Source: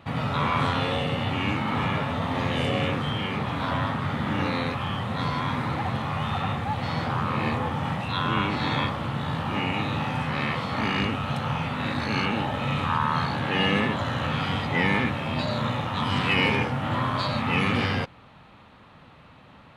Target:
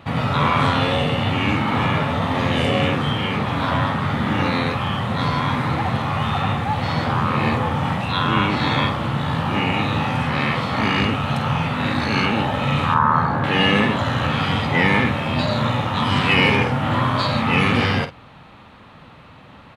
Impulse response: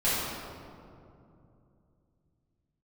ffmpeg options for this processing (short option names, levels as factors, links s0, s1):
-filter_complex "[0:a]asettb=1/sr,asplit=3[s0][s1][s2];[s0]atrim=end=12.944[s3];[s1]atrim=start=12.94:end=13.44,asetpts=PTS-STARTPTS,afade=t=in:d=0.004:c=qsin,afade=t=out:st=0.496:d=0.004:c=qsin,highshelf=f=2000:t=q:w=1.5:g=-12[s4];[s2]atrim=start=13.436[s5];[s3][s4]acrossfade=d=0.004:c1=hsin:c2=qsin[s6];[s6][s5]acrossfade=d=0.004:c1=qsin:c2=hsin,asplit=2[s7][s8];[s8]adelay=49,volume=0.282[s9];[s7][s9]amix=inputs=2:normalize=0,volume=2"